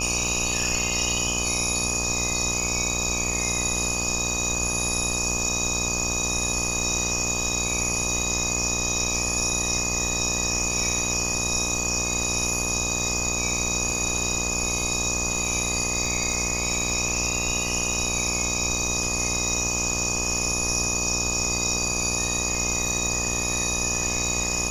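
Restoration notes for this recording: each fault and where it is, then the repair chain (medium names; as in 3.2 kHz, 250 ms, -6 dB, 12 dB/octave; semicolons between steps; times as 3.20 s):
buzz 60 Hz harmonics 21 -31 dBFS
crackle 32 per s -32 dBFS
whine 2.5 kHz -31 dBFS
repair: de-click; band-stop 2.5 kHz, Q 30; de-hum 60 Hz, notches 21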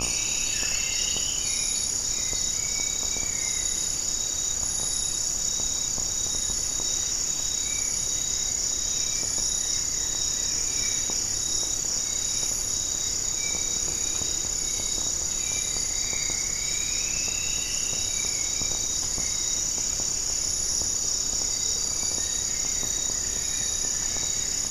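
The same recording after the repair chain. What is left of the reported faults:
nothing left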